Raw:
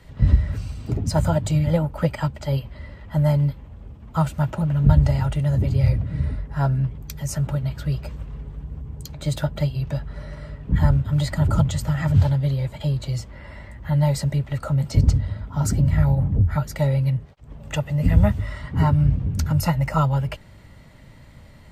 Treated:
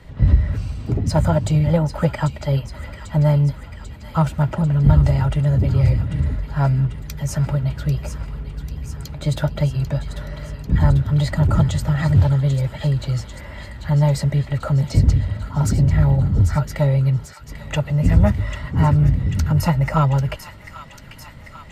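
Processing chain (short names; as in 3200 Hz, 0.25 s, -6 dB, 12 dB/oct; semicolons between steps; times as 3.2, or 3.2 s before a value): high shelf 4500 Hz -6.5 dB; in parallel at -3 dB: soft clip -19 dBFS, distortion -9 dB; on the sum: thin delay 0.793 s, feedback 69%, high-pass 1700 Hz, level -8.5 dB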